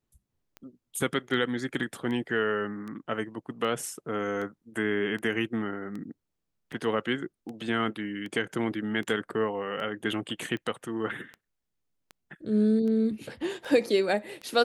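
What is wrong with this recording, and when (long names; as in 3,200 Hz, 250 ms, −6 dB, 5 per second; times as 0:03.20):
scratch tick 78 rpm −27 dBFS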